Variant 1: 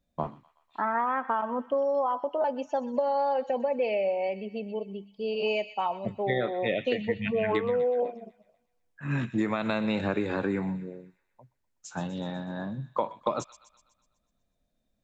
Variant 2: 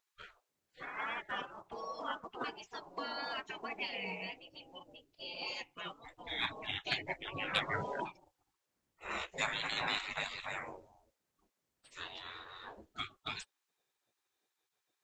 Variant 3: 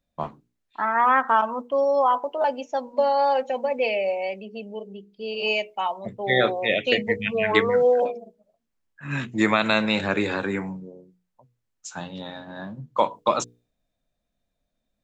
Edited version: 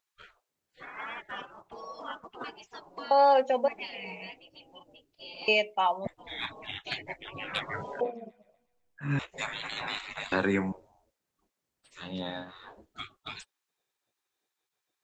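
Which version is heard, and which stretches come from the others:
2
3.11–3.68 from 3
5.48–6.07 from 3
8.01–9.19 from 1
10.32–10.72 from 3
12.06–12.47 from 3, crossfade 0.10 s

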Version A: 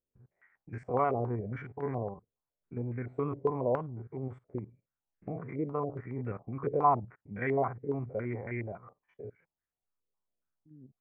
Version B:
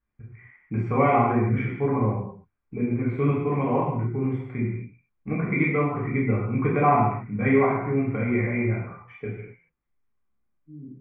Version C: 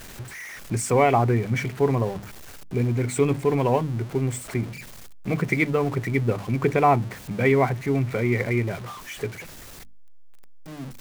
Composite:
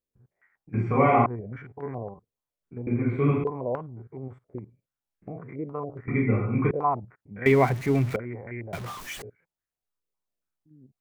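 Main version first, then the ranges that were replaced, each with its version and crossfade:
A
0.74–1.26 from B
2.87–3.44 from B
6.08–6.71 from B
7.46–8.16 from C
8.73–9.22 from C

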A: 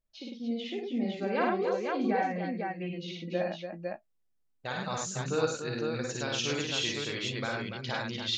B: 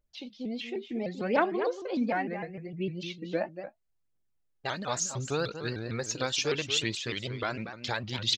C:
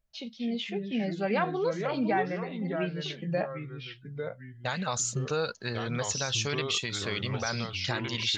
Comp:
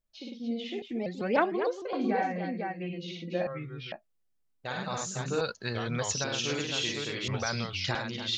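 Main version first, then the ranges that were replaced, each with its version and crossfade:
A
0.82–1.93 from B
3.47–3.92 from C
5.41–6.24 from C
7.28–7.95 from C

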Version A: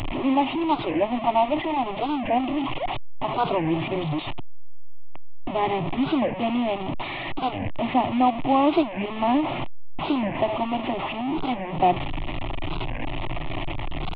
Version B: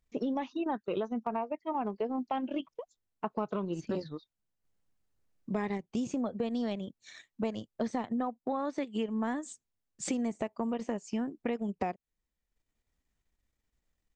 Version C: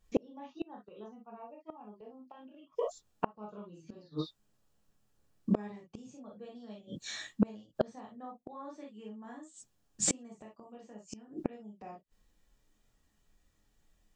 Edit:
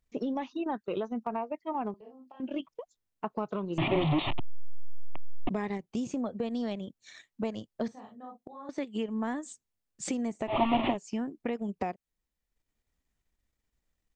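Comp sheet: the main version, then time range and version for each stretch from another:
B
1.94–2.4 from C
3.78–5.49 from A
7.88–8.69 from C
10.51–10.93 from A, crossfade 0.10 s

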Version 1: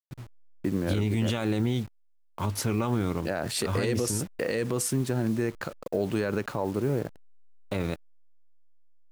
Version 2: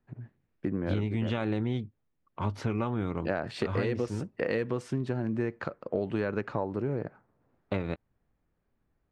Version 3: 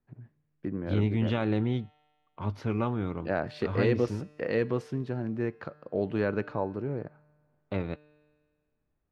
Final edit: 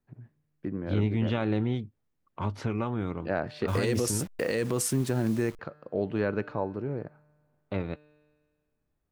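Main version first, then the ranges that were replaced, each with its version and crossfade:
3
1.75–3.13 from 2
3.68–5.59 from 1

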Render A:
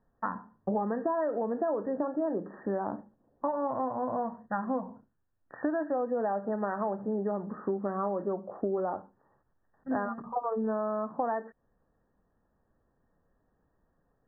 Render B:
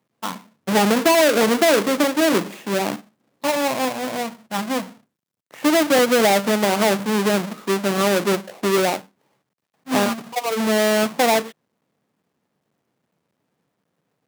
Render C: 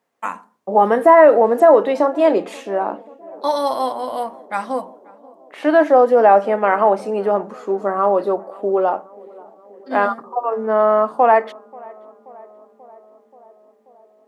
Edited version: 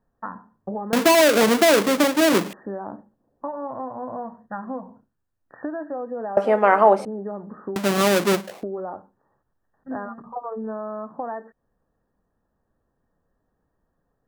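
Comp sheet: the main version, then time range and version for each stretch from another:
A
0.93–2.53 from B
6.37–7.05 from C
7.76–8.63 from B

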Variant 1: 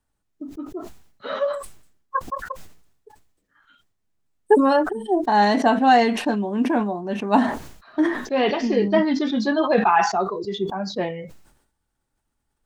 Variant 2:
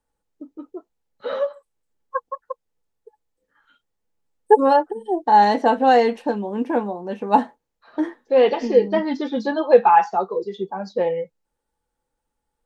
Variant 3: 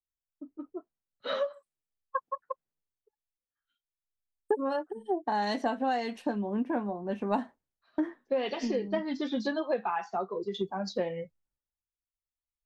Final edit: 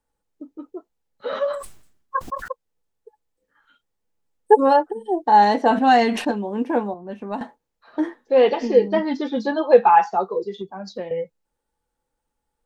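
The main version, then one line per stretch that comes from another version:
2
1.33–2.48 from 1
5.71–6.31 from 1
6.94–7.41 from 3
10.58–11.11 from 3

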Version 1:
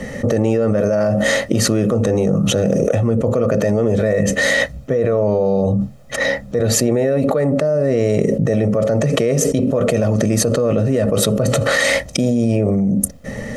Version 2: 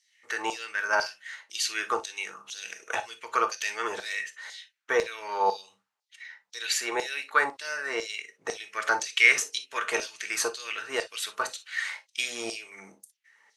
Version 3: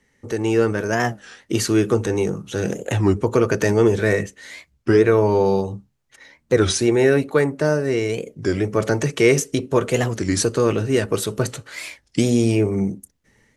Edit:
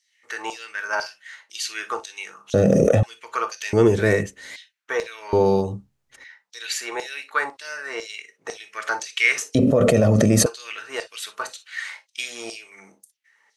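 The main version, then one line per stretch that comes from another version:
2
2.54–3.03 from 1
3.73–4.56 from 3
5.33–6.24 from 3
9.55–10.46 from 1

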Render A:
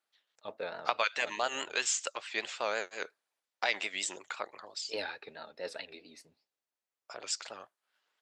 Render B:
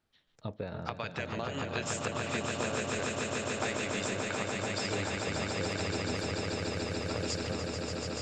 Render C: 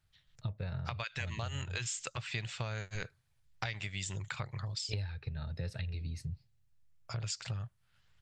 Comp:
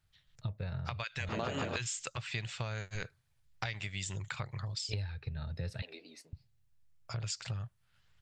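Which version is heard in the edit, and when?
C
1.29–1.76 from B
5.82–6.33 from A

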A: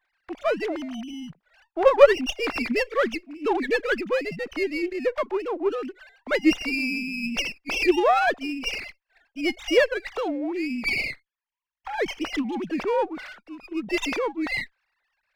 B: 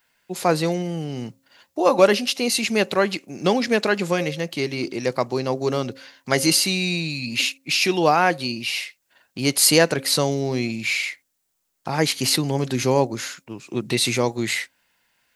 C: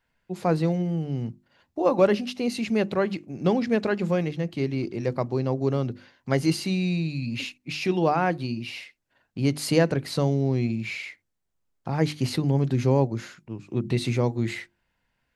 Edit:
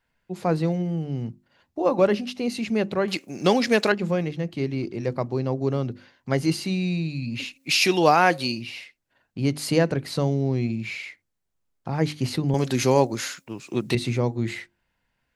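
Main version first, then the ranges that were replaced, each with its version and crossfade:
C
3.08–3.92 from B
7.57–8.59 from B, crossfade 0.10 s
12.54–13.95 from B
not used: A

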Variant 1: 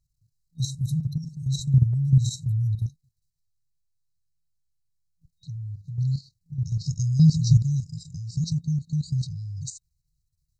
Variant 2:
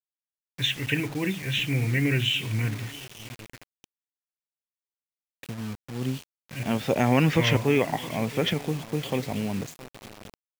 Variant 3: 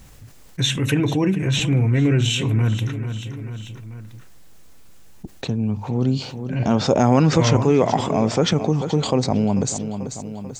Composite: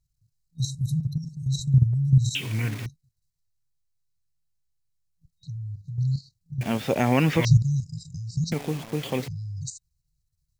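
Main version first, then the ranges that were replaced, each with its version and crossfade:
1
2.35–2.86 from 2
6.61–7.45 from 2
8.52–9.28 from 2
not used: 3

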